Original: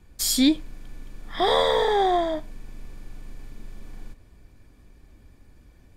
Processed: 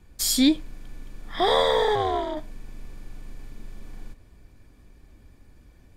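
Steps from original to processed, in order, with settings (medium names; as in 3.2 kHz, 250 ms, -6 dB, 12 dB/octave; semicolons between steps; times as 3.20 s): 1.95–2.37 s: AM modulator 290 Hz, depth 100%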